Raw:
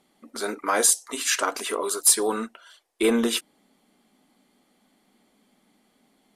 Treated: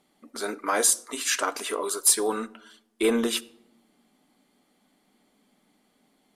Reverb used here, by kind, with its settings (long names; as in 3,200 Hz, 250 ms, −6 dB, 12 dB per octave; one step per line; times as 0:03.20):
rectangular room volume 2,500 cubic metres, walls furnished, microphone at 0.39 metres
level −2 dB